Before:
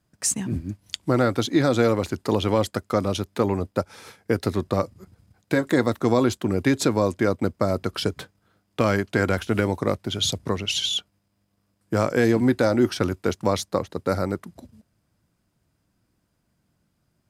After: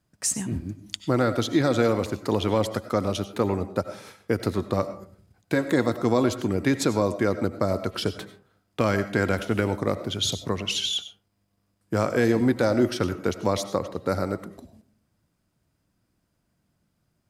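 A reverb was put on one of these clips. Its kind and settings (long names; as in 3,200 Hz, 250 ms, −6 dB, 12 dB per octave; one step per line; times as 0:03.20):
comb and all-pass reverb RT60 0.46 s, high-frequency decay 0.4×, pre-delay 55 ms, DRR 11.5 dB
level −2 dB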